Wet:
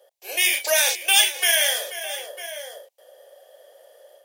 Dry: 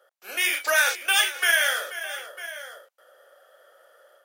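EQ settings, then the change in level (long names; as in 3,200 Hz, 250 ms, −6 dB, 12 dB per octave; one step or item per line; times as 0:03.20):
dynamic equaliser 470 Hz, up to −5 dB, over −41 dBFS, Q 1.3
phaser with its sweep stopped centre 560 Hz, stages 4
+7.5 dB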